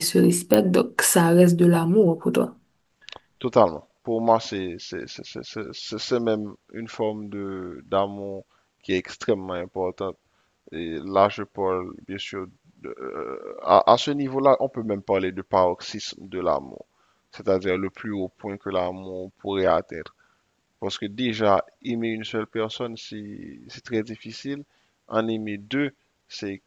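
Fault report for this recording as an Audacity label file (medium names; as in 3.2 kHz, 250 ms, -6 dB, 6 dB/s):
0.540000	0.540000	pop -3 dBFS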